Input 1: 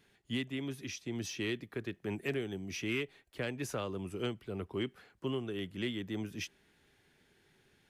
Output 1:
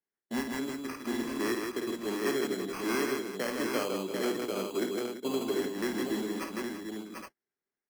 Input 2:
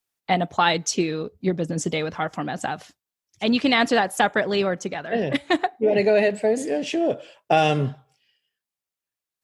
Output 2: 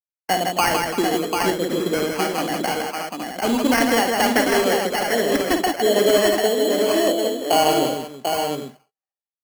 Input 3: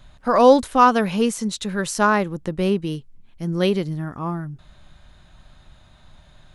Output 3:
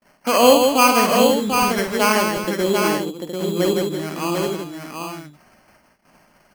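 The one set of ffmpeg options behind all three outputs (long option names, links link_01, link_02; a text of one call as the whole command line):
ffmpeg -i in.wav -filter_complex "[0:a]lowpass=3000,agate=range=-32dB:threshold=-46dB:ratio=16:detection=peak,highpass=frequency=220:width=0.5412,highpass=frequency=220:width=1.3066,asplit=2[link_01][link_02];[link_02]acompressor=threshold=-27dB:ratio=6,volume=1.5dB[link_03];[link_01][link_03]amix=inputs=2:normalize=0,acrusher=samples=12:mix=1:aa=0.000001,asplit=2[link_04][link_05];[link_05]aecho=0:1:52|159|339|743|817:0.447|0.596|0.251|0.562|0.447[link_06];[link_04][link_06]amix=inputs=2:normalize=0,volume=-2.5dB" out.wav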